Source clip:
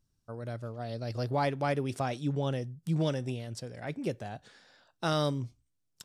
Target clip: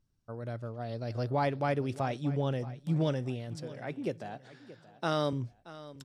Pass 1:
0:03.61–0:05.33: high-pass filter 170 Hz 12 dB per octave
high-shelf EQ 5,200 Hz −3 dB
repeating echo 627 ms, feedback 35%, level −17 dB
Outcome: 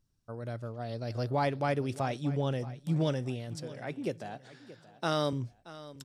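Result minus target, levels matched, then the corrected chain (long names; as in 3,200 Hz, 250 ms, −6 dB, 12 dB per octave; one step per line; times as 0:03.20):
8,000 Hz band +4.5 dB
0:03.61–0:05.33: high-pass filter 170 Hz 12 dB per octave
high-shelf EQ 5,200 Hz −10 dB
repeating echo 627 ms, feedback 35%, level −17 dB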